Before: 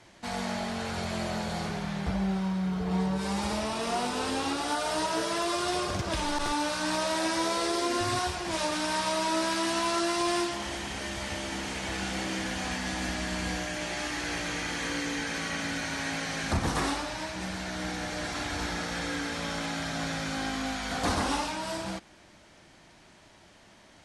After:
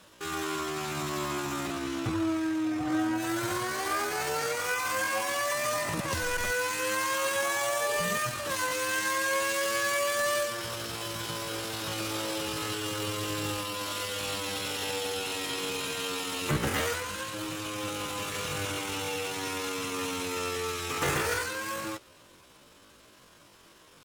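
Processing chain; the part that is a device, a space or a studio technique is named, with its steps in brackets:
chipmunk voice (pitch shifter +9 semitones)

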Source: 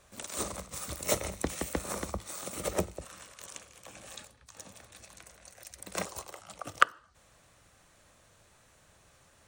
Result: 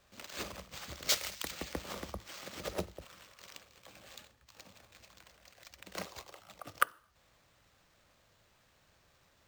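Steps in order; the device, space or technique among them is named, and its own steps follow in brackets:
early companding sampler (sample-rate reduction 11,000 Hz, jitter 0%; log-companded quantiser 6 bits)
0:01.09–0:01.51: tilt shelving filter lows −10 dB, about 1,100 Hz
level −6.5 dB

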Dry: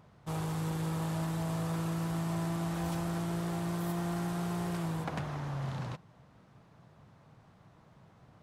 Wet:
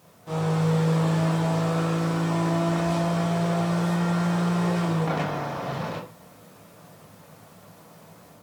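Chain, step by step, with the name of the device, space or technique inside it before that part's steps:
filmed off a television (band-pass filter 170–6,700 Hz; parametric band 490 Hz +5 dB 0.43 octaves; convolution reverb RT60 0.35 s, pre-delay 20 ms, DRR −6 dB; white noise bed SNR 32 dB; automatic gain control gain up to 4.5 dB; AAC 96 kbit/s 48,000 Hz)

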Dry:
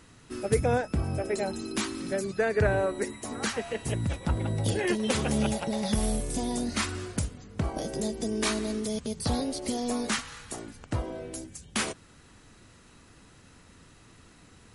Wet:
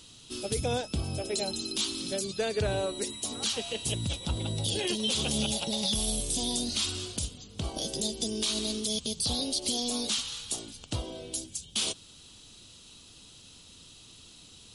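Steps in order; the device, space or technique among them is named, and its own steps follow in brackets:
over-bright horn tweeter (high shelf with overshoot 2,500 Hz +10 dB, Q 3; brickwall limiter −15.5 dBFS, peak gain reduction 11 dB)
level −3.5 dB

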